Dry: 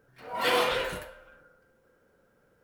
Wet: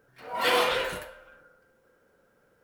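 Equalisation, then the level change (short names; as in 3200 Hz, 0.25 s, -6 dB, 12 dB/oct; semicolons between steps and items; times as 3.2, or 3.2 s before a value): low shelf 260 Hz -5 dB; +2.0 dB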